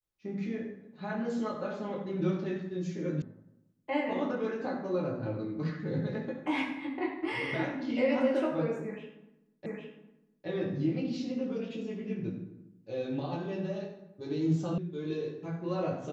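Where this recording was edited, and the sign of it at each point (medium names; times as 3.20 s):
3.22 s: sound stops dead
9.66 s: repeat of the last 0.81 s
14.78 s: sound stops dead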